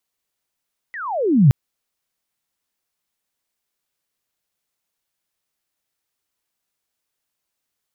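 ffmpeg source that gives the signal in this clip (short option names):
-f lavfi -i "aevalsrc='pow(10,(-28.5+22.5*t/0.57)/20)*sin(2*PI*2000*0.57/log(120/2000)*(exp(log(120/2000)*t/0.57)-1))':d=0.57:s=44100"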